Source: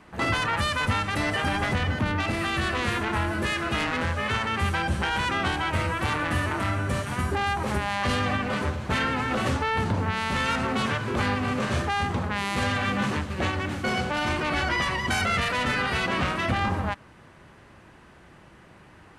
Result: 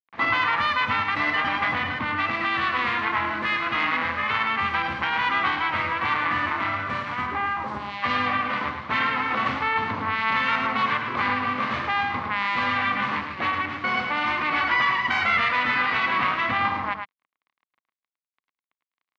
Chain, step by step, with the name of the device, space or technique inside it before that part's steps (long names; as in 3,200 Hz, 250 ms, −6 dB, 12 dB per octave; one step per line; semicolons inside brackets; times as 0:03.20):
0:07.26–0:08.02: parametric band 6,600 Hz → 1,200 Hz −14.5 dB 1.3 octaves
blown loudspeaker (dead-zone distortion −41.5 dBFS; loudspeaker in its box 180–4,300 Hz, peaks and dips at 180 Hz −8 dB, 390 Hz −9 dB, 570 Hz −5 dB, 1,100 Hz +10 dB, 2,100 Hz +8 dB)
single-tap delay 108 ms −6.5 dB